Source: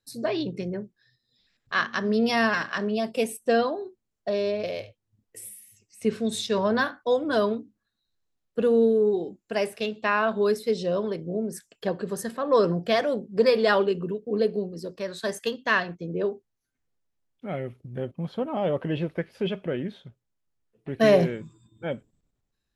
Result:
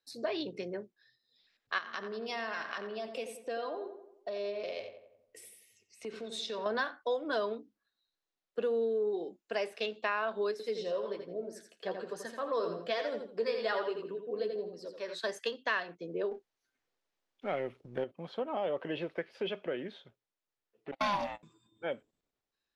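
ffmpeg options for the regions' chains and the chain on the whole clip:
-filter_complex "[0:a]asettb=1/sr,asplit=3[s0][s1][s2];[s0]atrim=end=1.784[s3];[s1]atrim=start=1.78:end=6.66,asetpts=PTS-STARTPTS,afade=t=in:d=0.004:c=qsin,afade=t=out:st=4.876:d=0.004:c=qsin,bandreject=f=1700:w=21,acompressor=threshold=0.0224:ratio=3:attack=3.2:release=140:knee=1:detection=peak,asplit=2[s4][s5];[s5]adelay=89,lowpass=f=2200:p=1,volume=0.398,asplit=2[s6][s7];[s7]adelay=89,lowpass=f=2200:p=1,volume=0.51,asplit=2[s8][s9];[s9]adelay=89,lowpass=f=2200:p=1,volume=0.51,asplit=2[s10][s11];[s11]adelay=89,lowpass=f=2200:p=1,volume=0.51,asplit=2[s12][s13];[s13]adelay=89,lowpass=f=2200:p=1,volume=0.51,asplit=2[s14][s15];[s15]adelay=89,lowpass=f=2200:p=1,volume=0.51[s16];[s4][s6][s8][s10][s12][s14][s16]amix=inputs=7:normalize=0,atrim=end_sample=215208[s17];[s2]atrim=start=6.656[s18];[s3][s17]acrossfade=d=0.004:c1=hsin:c2=qsin[s19];[s19][s18]acrossfade=d=0.004:c1=qsin:c2=hsin,asettb=1/sr,asplit=3[s20][s21][s22];[s20]atrim=end=10.514[s23];[s21]atrim=start=10.51:end=15.15,asetpts=PTS-STARTPTS,afade=t=in:d=0.004:c=qsin,afade=t=out:st=4.636:d=0.004:c=qsin,flanger=delay=6:depth=7.3:regen=39:speed=1.2:shape=triangular,aecho=1:1:83|166|249:0.422|0.11|0.0285,atrim=end_sample=204624[s24];[s22]atrim=start=15.146[s25];[s23][s24]acrossfade=d=0.004:c1=hsin:c2=qsin[s26];[s26][s25]acrossfade=d=0.004:c1=qsin:c2=hsin,asettb=1/sr,asplit=3[s27][s28][s29];[s27]atrim=end=16.314[s30];[s28]atrim=start=16.31:end=18.04,asetpts=PTS-STARTPTS,afade=t=in:d=0.004:c=qsin,afade=t=out:st=1.726:d=0.004:c=qsin,aeval=exprs='if(lt(val(0),0),0.708*val(0),val(0))':c=same,acontrast=72[s31];[s29]atrim=start=18.036[s32];[s30][s31]acrossfade=d=0.004:c1=hsin:c2=qsin[s33];[s33][s32]acrossfade=d=0.004:c1=qsin:c2=hsin,asettb=1/sr,asplit=3[s34][s35][s36];[s34]atrim=end=20.914[s37];[s35]atrim=start=20.91:end=21.43,asetpts=PTS-STARTPTS,afade=t=in:d=0.004:c=qsin,afade=t=out:st=0.516:d=0.004:c=qsin,agate=range=0.0794:threshold=0.0251:ratio=16:release=100:detection=peak,highshelf=f=2100:g=7.5,aeval=exprs='val(0)*sin(2*PI*410*n/s)':c=same[s38];[s36]atrim=start=21.426[s39];[s37][s38]acrossfade=d=0.004:c1=hsin:c2=qsin[s40];[s40][s39]acrossfade=d=0.004:c1=qsin:c2=hsin,acrossover=split=310 5600:gain=0.141 1 0.112[s41][s42][s43];[s41][s42][s43]amix=inputs=3:normalize=0,acompressor=threshold=0.0355:ratio=2.5,highshelf=f=5700:g=6.5,volume=0.75"

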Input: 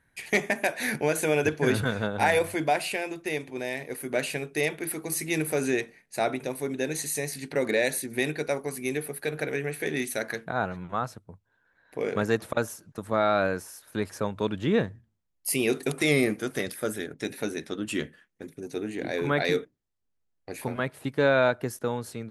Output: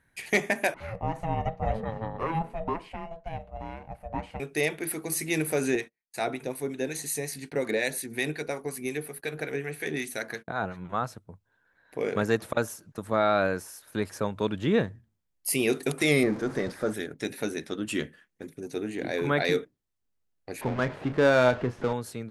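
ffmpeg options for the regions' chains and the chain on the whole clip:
-filter_complex "[0:a]asettb=1/sr,asplit=3[s0][s1][s2];[s0]atrim=end=0.744[s3];[s1]atrim=start=0.74:end=4.4,asetpts=PTS-STARTPTS,afade=t=in:d=0.004:c=qsin,afade=t=out:st=3.656:d=0.004:c=qsin,bandpass=f=270:t=q:w=0.55,aeval=exprs='val(0)*sin(2*PI*330*n/s)':c=same[s4];[s2]atrim=start=4.396[s5];[s3][s4]acrossfade=d=0.004:c1=hsin:c2=qsin[s6];[s6][s5]acrossfade=d=0.004:c1=qsin:c2=hsin,asettb=1/sr,asplit=3[s7][s8][s9];[s7]atrim=end=5.754[s10];[s8]atrim=start=5.75:end=10.85,asetpts=PTS-STARTPTS,afade=t=in:d=0.004:c=qsin,afade=t=out:st=5.096:d=0.004:c=qsin,agate=range=0.0251:threshold=0.00562:ratio=16:release=100:detection=peak,bandreject=f=580:w=15,acrossover=split=870[s11][s12];[s11]aeval=exprs='val(0)*(1-0.5/2+0.5/2*cos(2*PI*5.5*n/s))':c=same[s13];[s12]aeval=exprs='val(0)*(1-0.5/2-0.5/2*cos(2*PI*5.5*n/s))':c=same[s14];[s13][s14]amix=inputs=2:normalize=0[s15];[s9]atrim=start=10.846[s16];[s10][s15]acrossfade=d=0.004:c1=hsin:c2=qsin[s17];[s17][s16]acrossfade=d=0.004:c1=qsin:c2=hsin,asettb=1/sr,asplit=3[s18][s19][s20];[s18]atrim=end=16.234[s21];[s19]atrim=start=16.23:end=16.94,asetpts=PTS-STARTPTS,afade=t=in:d=0.004:c=qsin,afade=t=out:st=0.706:d=0.004:c=qsin,aeval=exprs='val(0)+0.5*0.0237*sgn(val(0))':c=same,lowpass=4100,equalizer=f=2900:t=o:w=1:g=-11.5[s22];[s20]atrim=start=16.936[s23];[s21][s22]acrossfade=d=0.004:c1=hsin:c2=qsin[s24];[s24][s23]acrossfade=d=0.004:c1=qsin:c2=hsin,asettb=1/sr,asplit=3[s25][s26][s27];[s25]atrim=end=20.614[s28];[s26]atrim=start=20.61:end=21.93,asetpts=PTS-STARTPTS,afade=t=in:d=0.004:c=qsin,afade=t=out:st=1.316:d=0.004:c=qsin,aeval=exprs='val(0)+0.5*0.0251*sgn(val(0))':c=same,adynamicsmooth=sensitivity=2:basefreq=1600,asplit=2[s29][s30];[s30]adelay=32,volume=0.237[s31];[s29][s31]amix=inputs=2:normalize=0,atrim=end_sample=58212[s32];[s27]atrim=start=21.926[s33];[s28][s32]acrossfade=d=0.004:c1=hsin:c2=qsin[s34];[s34][s33]acrossfade=d=0.004:c1=qsin:c2=hsin"

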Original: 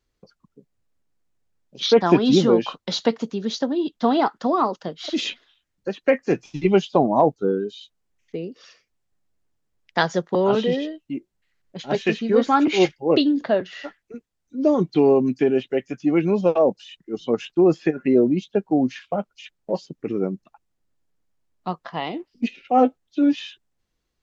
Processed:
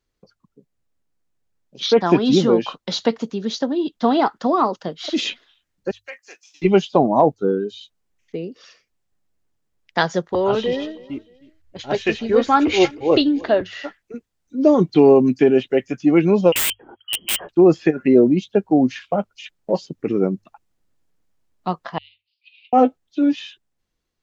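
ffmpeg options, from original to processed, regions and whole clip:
-filter_complex "[0:a]asettb=1/sr,asplit=3[s0][s1][s2];[s0]atrim=end=5.914[s3];[s1]atrim=start=5.91:end=6.62,asetpts=PTS-STARTPTS,afade=t=in:d=0.004:c=qsin,afade=t=out:st=0.706:d=0.004:c=qsin,highpass=550,aderivative[s4];[s2]atrim=start=6.616[s5];[s3][s4]acrossfade=d=0.004:c1=hsin:c2=qsin[s6];[s6][s5]acrossfade=d=0.004:c1=qsin:c2=hsin,asettb=1/sr,asplit=3[s7][s8][s9];[s7]atrim=end=10.284[s10];[s8]atrim=start=10.28:end=13.62,asetpts=PTS-STARTPTS,afade=t=in:d=0.004:c=qsin,afade=t=out:st=3.336:d=0.004:c=qsin,lowshelf=f=120:t=q:w=3:g=11,aecho=1:1:312|624:0.0841|0.0252,atrim=end_sample=147294[s11];[s9]atrim=start=13.616[s12];[s10][s11]acrossfade=d=0.004:c1=hsin:c2=qsin[s13];[s13][s12]acrossfade=d=0.004:c1=qsin:c2=hsin,asettb=1/sr,asplit=3[s14][s15][s16];[s14]atrim=end=16.524[s17];[s15]atrim=start=16.52:end=17.49,asetpts=PTS-STARTPTS,afade=t=in:d=0.004:c=qsin,afade=t=out:st=0.966:d=0.004:c=qsin,lowpass=f=2800:t=q:w=0.5098,lowpass=f=2800:t=q:w=0.6013,lowpass=f=2800:t=q:w=0.9,lowpass=f=2800:t=q:w=2.563,afreqshift=-3300,aeval=exprs='(mod(8.91*val(0)+1,2)-1)/8.91':c=same[s18];[s16]atrim=start=17.486[s19];[s17][s18]acrossfade=d=0.004:c1=hsin:c2=qsin[s20];[s20][s19]acrossfade=d=0.004:c1=qsin:c2=hsin,asettb=1/sr,asplit=3[s21][s22][s23];[s21]atrim=end=21.984[s24];[s22]atrim=start=21.98:end=22.73,asetpts=PTS-STARTPTS,afade=t=in:d=0.004:c=qsin,afade=t=out:st=0.746:d=0.004:c=qsin,acompressor=threshold=0.00501:ratio=2.5:attack=3.2:release=140:knee=1:detection=peak,asuperpass=centerf=3300:order=8:qfactor=1.6[s25];[s23]atrim=start=22.726[s26];[s24][s25]acrossfade=d=0.004:c1=hsin:c2=qsin[s27];[s27][s26]acrossfade=d=0.004:c1=qsin:c2=hsin,bandreject=f=50:t=h:w=6,bandreject=f=100:t=h:w=6,dynaudnorm=f=340:g=11:m=3.76,volume=0.891"

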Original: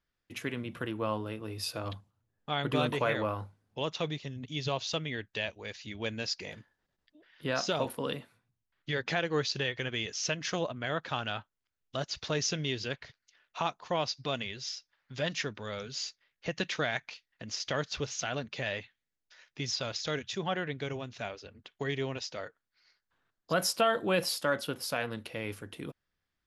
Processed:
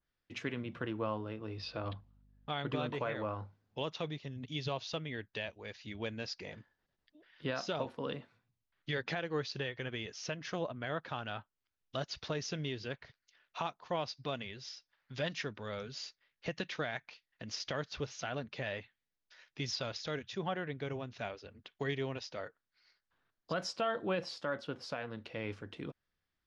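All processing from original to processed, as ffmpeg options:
-filter_complex "[0:a]asettb=1/sr,asplit=3[s0][s1][s2];[s0]atrim=end=1.574[s3];[s1]atrim=start=1.57:end=2.49,asetpts=PTS-STARTPTS,afade=t=in:d=0.004:c=qsin,afade=t=out:st=0.916:d=0.004:c=qsin,lowpass=f=4700:w=0.5412,lowpass=f=4700:w=1.3066,aeval=exprs='val(0)+0.000794*(sin(2*PI*50*n/s)+sin(2*PI*2*50*n/s)/2+sin(2*PI*3*50*n/s)/3+sin(2*PI*4*50*n/s)/4+sin(2*PI*5*50*n/s)/5)':c=same[s4];[s2]atrim=start=2.486[s5];[s3][s4]acrossfade=d=0.004:c1=hsin:c2=qsin[s6];[s6][s5]acrossfade=d=0.004:c1=qsin:c2=hsin,lowpass=f=6000:w=0.5412,lowpass=f=6000:w=1.3066,alimiter=limit=0.0841:level=0:latency=1:release=481,adynamicequalizer=threshold=0.00282:dfrequency=2100:dqfactor=0.7:tfrequency=2100:tqfactor=0.7:attack=5:release=100:ratio=0.375:range=3:mode=cutabove:tftype=highshelf,volume=0.794"

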